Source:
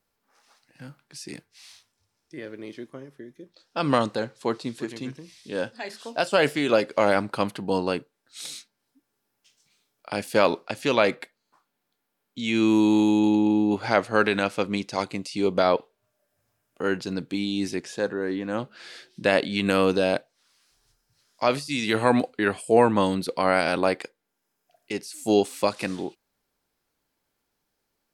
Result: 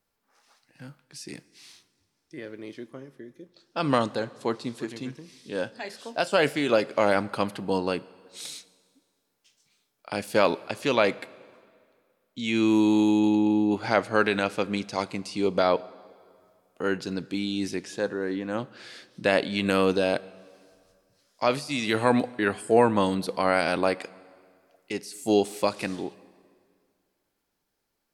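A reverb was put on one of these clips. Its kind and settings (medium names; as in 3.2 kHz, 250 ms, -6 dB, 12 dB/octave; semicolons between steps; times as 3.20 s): plate-style reverb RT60 2.1 s, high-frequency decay 0.85×, DRR 19.5 dB; trim -1.5 dB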